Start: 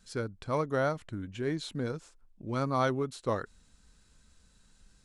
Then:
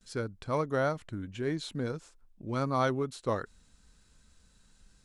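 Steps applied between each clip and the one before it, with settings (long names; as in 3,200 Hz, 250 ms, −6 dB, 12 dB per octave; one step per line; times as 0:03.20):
noise gate with hold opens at −56 dBFS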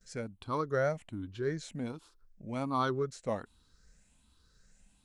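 rippled gain that drifts along the octave scale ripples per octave 0.56, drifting +1.3 Hz, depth 11 dB
level −4.5 dB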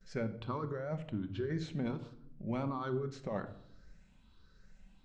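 compressor whose output falls as the input rises −36 dBFS, ratio −1
high-frequency loss of the air 180 metres
convolution reverb RT60 0.70 s, pre-delay 5 ms, DRR 7.5 dB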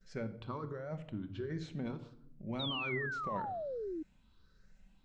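sound drawn into the spectrogram fall, 0:02.59–0:04.03, 300–3,900 Hz −36 dBFS
level −3.5 dB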